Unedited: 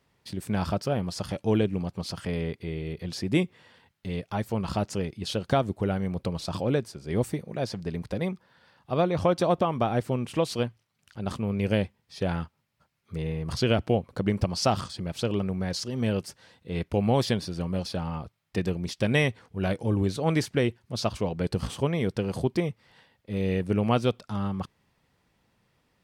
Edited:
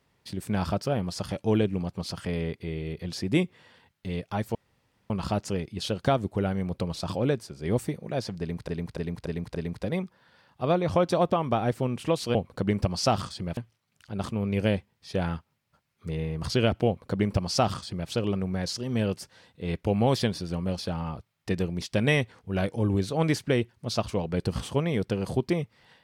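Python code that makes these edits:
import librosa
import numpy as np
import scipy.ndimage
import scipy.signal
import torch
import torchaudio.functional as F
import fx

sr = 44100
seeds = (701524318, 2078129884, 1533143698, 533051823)

y = fx.edit(x, sr, fx.insert_room_tone(at_s=4.55, length_s=0.55),
    fx.repeat(start_s=7.84, length_s=0.29, count=5),
    fx.duplicate(start_s=13.94, length_s=1.22, to_s=10.64), tone=tone)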